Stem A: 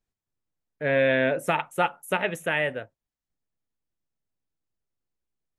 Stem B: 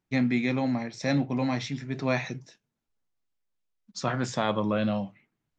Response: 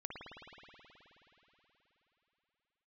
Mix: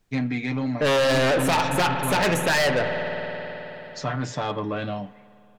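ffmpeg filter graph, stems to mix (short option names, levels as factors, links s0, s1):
-filter_complex "[0:a]bandreject=f=50:t=h:w=6,bandreject=f=100:t=h:w=6,bandreject=f=150:t=h:w=6,alimiter=limit=0.178:level=0:latency=1:release=15,aeval=exprs='0.178*sin(PI/2*2.24*val(0)/0.178)':c=same,volume=1.33,asplit=2[s0][s1];[s1]volume=0.668[s2];[1:a]aecho=1:1:6.8:0.73,volume=0.944,asplit=2[s3][s4];[s4]volume=0.112[s5];[2:a]atrim=start_sample=2205[s6];[s2][s5]amix=inputs=2:normalize=0[s7];[s7][s6]afir=irnorm=-1:irlink=0[s8];[s0][s3][s8]amix=inputs=3:normalize=0,highshelf=f=6200:g=-4.5,asoftclip=type=tanh:threshold=0.126"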